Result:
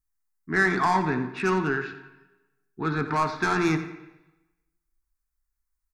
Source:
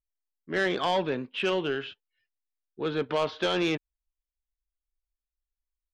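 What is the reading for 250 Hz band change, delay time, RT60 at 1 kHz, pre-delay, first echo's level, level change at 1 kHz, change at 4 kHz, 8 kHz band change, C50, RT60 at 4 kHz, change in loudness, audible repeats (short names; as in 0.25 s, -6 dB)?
+5.0 dB, 87 ms, 1.0 s, 4 ms, -13.5 dB, +7.0 dB, -7.5 dB, +6.0 dB, 9.0 dB, 0.95 s, +3.5 dB, 1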